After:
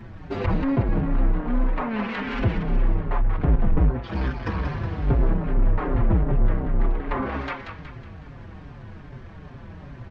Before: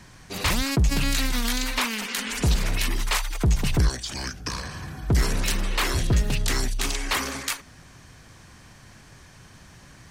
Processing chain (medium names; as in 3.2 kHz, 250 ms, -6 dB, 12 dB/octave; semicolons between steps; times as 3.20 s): square wave that keeps the level; low-pass that closes with the level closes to 1.2 kHz, closed at -17.5 dBFS; in parallel at +2.5 dB: compression, threshold -25 dBFS, peak gain reduction 9.5 dB; on the sum: hard clipper -14 dBFS, distortion -16 dB; tape spacing loss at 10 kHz 40 dB; on a send: thinning echo 184 ms, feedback 46%, high-pass 760 Hz, level -5 dB; on the sum: endless flanger 5.4 ms -2.5 Hz